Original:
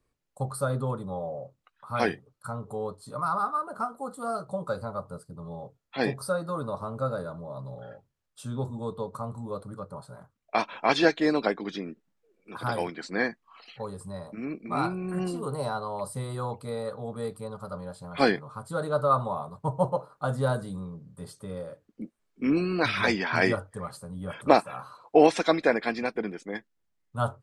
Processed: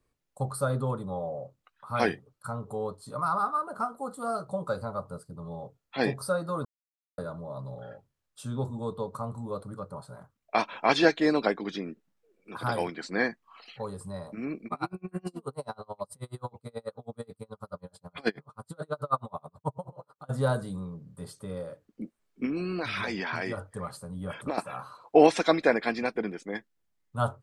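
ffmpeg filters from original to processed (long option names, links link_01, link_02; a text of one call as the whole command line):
ffmpeg -i in.wav -filter_complex "[0:a]asettb=1/sr,asplit=3[link_01][link_02][link_03];[link_01]atrim=end=0.944[link_04];[link_02]atrim=start=0.94:end=1.39,asetpts=PTS-STARTPTS,afade=type=in:duration=0.004:curve=qsin,afade=type=out:start_time=0.446:duration=0.004:curve=qsin,bandreject=frequency=5500:width=12[link_05];[link_03]atrim=start=1.386[link_06];[link_04][link_05]acrossfade=duration=0.004:curve1=hsin:curve2=qsin[link_07];[link_07][link_06]acrossfade=duration=0.004:curve1=qsin:curve2=hsin,asplit=3[link_08][link_09][link_10];[link_08]afade=type=out:start_time=14.67:duration=0.02[link_11];[link_09]aeval=exprs='val(0)*pow(10,-37*(0.5-0.5*cos(2*PI*9.3*n/s))/20)':channel_layout=same,afade=type=in:start_time=14.67:duration=0.02,afade=type=out:start_time=20.29:duration=0.02[link_12];[link_10]afade=type=in:start_time=20.29:duration=0.02[link_13];[link_11][link_12][link_13]amix=inputs=3:normalize=0,asettb=1/sr,asplit=3[link_14][link_15][link_16];[link_14]atrim=end=22.454[link_17];[link_15]atrim=start=22.45:end=24.58,asetpts=PTS-STARTPTS,afade=type=in:duration=0.004:curve=qsin,afade=type=out:start_time=2.126:duration=0.004:curve=qsin,acompressor=threshold=-28dB:ratio=6:attack=3.2:release=140:knee=1:detection=peak[link_18];[link_16]atrim=start=24.576[link_19];[link_17][link_18]acrossfade=duration=0.004:curve1=hsin:curve2=qsin[link_20];[link_20][link_19]acrossfade=duration=0.004:curve1=qsin:curve2=hsin,asplit=3[link_21][link_22][link_23];[link_21]atrim=end=6.65,asetpts=PTS-STARTPTS,afade=type=out:start_time=6.646:duration=0.004:curve=hsin[link_24];[link_22]atrim=start=6.65:end=7.18,asetpts=PTS-STARTPTS,volume=0[link_25];[link_23]atrim=start=7.18,asetpts=PTS-STARTPTS,afade=type=in:duration=0.004:curve=hsin[link_26];[link_24][link_25][link_26]concat=n=3:v=0:a=1" out.wav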